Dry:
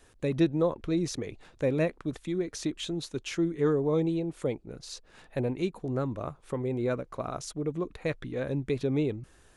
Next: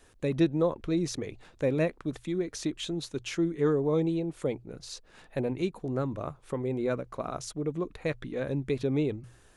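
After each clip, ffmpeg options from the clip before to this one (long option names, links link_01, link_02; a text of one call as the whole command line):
ffmpeg -i in.wav -af "bandreject=frequency=60:width_type=h:width=6,bandreject=frequency=120:width_type=h:width=6" out.wav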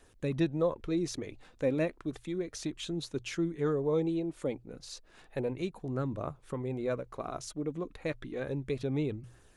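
ffmpeg -i in.wav -af "aphaser=in_gain=1:out_gain=1:delay=4.1:decay=0.27:speed=0.32:type=triangular,volume=-3.5dB" out.wav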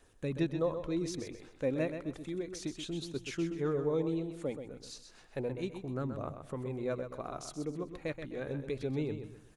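ffmpeg -i in.wav -af "aecho=1:1:128|256|384|512:0.376|0.124|0.0409|0.0135,volume=-3dB" out.wav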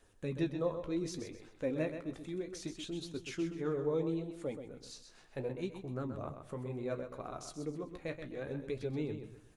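ffmpeg -i in.wav -af "flanger=delay=9.3:depth=8:regen=-49:speed=0.68:shape=sinusoidal,volume=1.5dB" out.wav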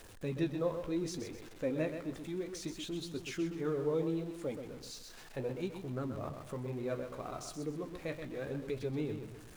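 ffmpeg -i in.wav -af "aeval=exprs='val(0)+0.5*0.00316*sgn(val(0))':channel_layout=same" out.wav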